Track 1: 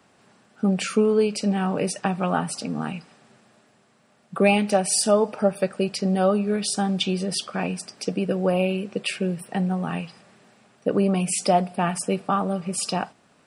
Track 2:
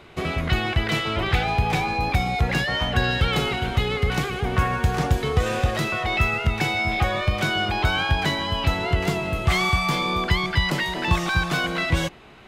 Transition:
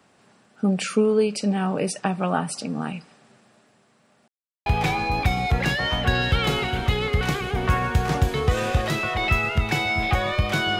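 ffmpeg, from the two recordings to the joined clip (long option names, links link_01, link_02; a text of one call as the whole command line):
ffmpeg -i cue0.wav -i cue1.wav -filter_complex "[0:a]apad=whole_dur=10.79,atrim=end=10.79,asplit=2[link_01][link_02];[link_01]atrim=end=4.28,asetpts=PTS-STARTPTS,afade=type=out:start_time=4.276:duration=0.004:curve=hsin[link_03];[link_02]atrim=start=4.28:end=4.66,asetpts=PTS-STARTPTS,volume=0[link_04];[1:a]atrim=start=1.55:end=7.68,asetpts=PTS-STARTPTS,afade=type=in:duration=0.004:curve=hsin[link_05];[link_03][link_04][link_05]concat=n=3:v=0:a=1" out.wav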